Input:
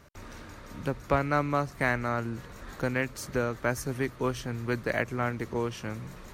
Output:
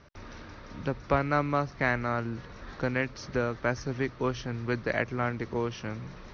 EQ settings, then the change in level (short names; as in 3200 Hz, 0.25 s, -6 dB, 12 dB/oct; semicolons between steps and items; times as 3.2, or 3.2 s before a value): steep low-pass 6000 Hz 96 dB/oct; 0.0 dB